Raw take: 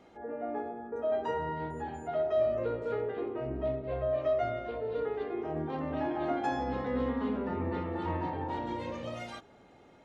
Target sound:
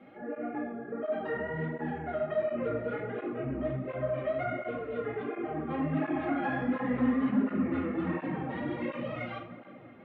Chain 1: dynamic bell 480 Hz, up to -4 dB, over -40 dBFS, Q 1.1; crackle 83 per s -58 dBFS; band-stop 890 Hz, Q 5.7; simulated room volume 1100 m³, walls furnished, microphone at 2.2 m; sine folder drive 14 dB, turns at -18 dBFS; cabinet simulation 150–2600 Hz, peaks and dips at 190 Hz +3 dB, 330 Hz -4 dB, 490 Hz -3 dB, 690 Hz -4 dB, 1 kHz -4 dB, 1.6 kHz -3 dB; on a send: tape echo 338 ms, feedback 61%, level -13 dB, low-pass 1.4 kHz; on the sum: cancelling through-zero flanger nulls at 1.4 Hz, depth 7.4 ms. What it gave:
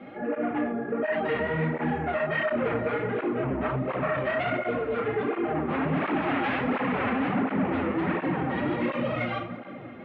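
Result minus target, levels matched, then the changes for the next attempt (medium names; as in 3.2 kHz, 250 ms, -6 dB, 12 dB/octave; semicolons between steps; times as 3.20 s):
sine folder: distortion +19 dB
change: sine folder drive 4 dB, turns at -18 dBFS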